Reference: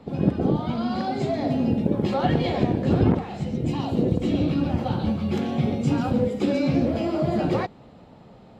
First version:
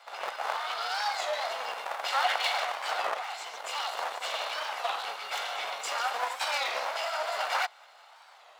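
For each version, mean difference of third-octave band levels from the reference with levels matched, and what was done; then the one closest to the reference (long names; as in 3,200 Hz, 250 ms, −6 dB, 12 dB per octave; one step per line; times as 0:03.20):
21.0 dB: lower of the sound and its delayed copy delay 1.4 ms
high-pass filter 910 Hz 24 dB per octave
high-shelf EQ 5,600 Hz +4.5 dB
wow of a warped record 33 1/3 rpm, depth 160 cents
level +5 dB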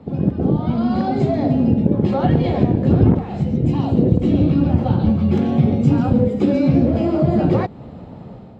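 4.5 dB: automatic gain control gain up to 7 dB
high-pass filter 60 Hz
spectral tilt −2.5 dB per octave
in parallel at +2.5 dB: downward compressor, threshold −21 dBFS, peak gain reduction 16.5 dB
on the sum: level −6.5 dB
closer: second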